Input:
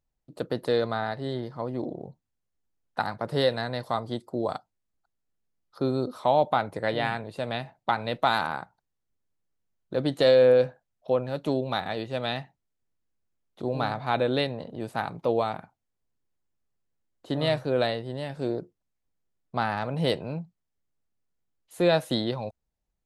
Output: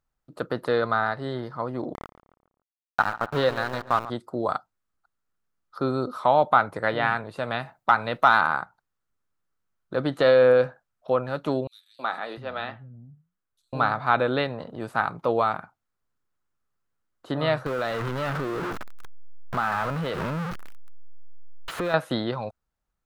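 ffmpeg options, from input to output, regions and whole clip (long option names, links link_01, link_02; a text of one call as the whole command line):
ffmpeg -i in.wav -filter_complex "[0:a]asettb=1/sr,asplit=3[link_01][link_02][link_03];[link_01]atrim=end=1.944[link_04];[link_02]atrim=start=1.94:end=4.1,asetpts=PTS-STARTPTS,afade=type=in:duration=0.004:curve=qsin,afade=type=out:start_time=2.156:duration=0.004:curve=qsin,aeval=exprs='val(0)*gte(abs(val(0)),0.0316)':channel_layout=same,bandreject=frequency=2000:width=14,asplit=2[link_05][link_06];[link_06]adelay=140,lowpass=frequency=2400:poles=1,volume=-14.5dB,asplit=2[link_07][link_08];[link_08]adelay=140,lowpass=frequency=2400:poles=1,volume=0.41,asplit=2[link_09][link_10];[link_10]adelay=140,lowpass=frequency=2400:poles=1,volume=0.41,asplit=2[link_11][link_12];[link_12]adelay=140,lowpass=frequency=2400:poles=1,volume=0.41[link_13];[link_05][link_07][link_09][link_11][link_13]amix=inputs=5:normalize=0,atrim=end_sample=95256[link_14];[link_03]atrim=start=4.096[link_15];[link_04][link_14]acrossfade=duration=0.004:curve1=hsin:curve2=qsin[link_16];[link_16][link_15]acrossfade=duration=0.004:curve1=qsin:curve2=hsin,asettb=1/sr,asplit=3[link_17][link_18][link_19];[link_17]atrim=end=7.524[link_20];[link_18]atrim=start=7.52:end=8.41,asetpts=PTS-STARTPTS,afade=type=in:duration=0.004:curve=qsin,afade=type=out:start_time=0.886:duration=0.004:curve=qsin,highshelf=frequency=8000:gain=8.5,asoftclip=type=hard:threshold=-13.5dB[link_21];[link_19]atrim=start=8.406[link_22];[link_20][link_21]acrossfade=duration=0.004:curve1=hsin:curve2=qsin[link_23];[link_23][link_22]acrossfade=duration=0.004:curve1=qsin:curve2=hsin,asettb=1/sr,asplit=3[link_24][link_25][link_26];[link_24]atrim=end=11.674[link_27];[link_25]atrim=start=11.67:end=13.73,asetpts=PTS-STARTPTS,afade=type=in:duration=0.004:curve=qsin,afade=type=out:start_time=2.056:duration=0.004:curve=qsin,acrossover=split=210|4900[link_28][link_29][link_30];[link_29]adelay=320[link_31];[link_28]adelay=700[link_32];[link_32][link_31][link_30]amix=inputs=3:normalize=0,atrim=end_sample=90846,flanger=delay=6:depth=6.3:regen=-80:speed=1.1:shape=triangular[link_33];[link_26]atrim=start=13.726[link_34];[link_27][link_33]acrossfade=duration=0.004:curve1=hsin:curve2=qsin[link_35];[link_35][link_34]acrossfade=duration=0.004:curve1=qsin:curve2=hsin,asettb=1/sr,asplit=3[link_36][link_37][link_38];[link_36]atrim=end=17.664[link_39];[link_37]atrim=start=17.66:end=21.94,asetpts=PTS-STARTPTS,afade=type=in:duration=0.004:curve=qsin,afade=type=out:start_time=4.276:duration=0.004:curve=qsin,aeval=exprs='val(0)+0.5*0.0501*sgn(val(0))':channel_layout=same,acompressor=threshold=-26dB:ratio=5:attack=3.2:release=140:knee=1:detection=peak[link_40];[link_38]atrim=start=21.936[link_41];[link_39][link_40]acrossfade=duration=0.004:curve1=hsin:curve2=qsin[link_42];[link_42][link_41]acrossfade=duration=0.004:curve1=qsin:curve2=hsin,acrossover=split=4000[link_43][link_44];[link_44]acompressor=threshold=-49dB:ratio=4:attack=1:release=60[link_45];[link_43][link_45]amix=inputs=2:normalize=0,equalizer=frequency=1300:width=1.8:gain=12" out.wav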